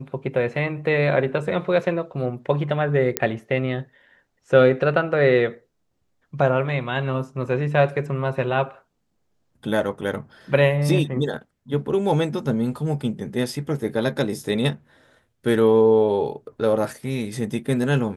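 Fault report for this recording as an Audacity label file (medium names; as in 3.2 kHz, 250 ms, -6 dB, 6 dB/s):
3.170000	3.170000	pop -1 dBFS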